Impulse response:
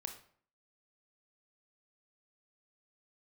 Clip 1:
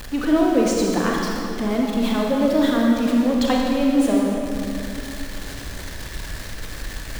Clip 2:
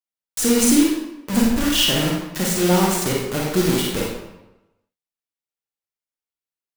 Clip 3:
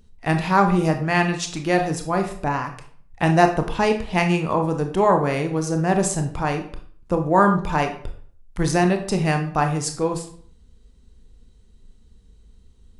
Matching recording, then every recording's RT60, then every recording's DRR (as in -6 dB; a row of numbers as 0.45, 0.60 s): 3; 2.8, 1.0, 0.55 s; -1.5, -3.0, 4.5 dB